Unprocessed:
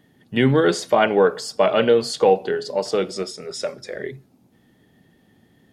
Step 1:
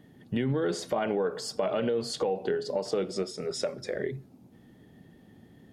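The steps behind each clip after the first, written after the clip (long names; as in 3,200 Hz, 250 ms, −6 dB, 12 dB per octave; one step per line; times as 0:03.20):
tilt shelving filter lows +3.5 dB, about 810 Hz
brickwall limiter −11.5 dBFS, peak gain reduction 8.5 dB
downward compressor 2.5 to 1, threshold −29 dBFS, peak gain reduction 9 dB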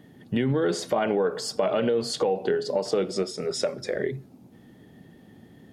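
low-shelf EQ 61 Hz −7 dB
level +4.5 dB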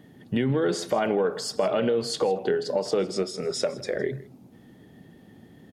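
single-tap delay 160 ms −19.5 dB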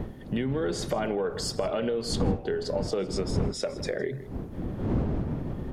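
wind on the microphone 230 Hz −26 dBFS
downward compressor 2.5 to 1, threshold −30 dBFS, peak gain reduction 13 dB
level +2 dB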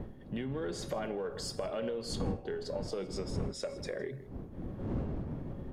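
tuned comb filter 550 Hz, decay 0.52 s, mix 70%
in parallel at −10 dB: asymmetric clip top −40.5 dBFS
on the sum: one half of a high-frequency compander decoder only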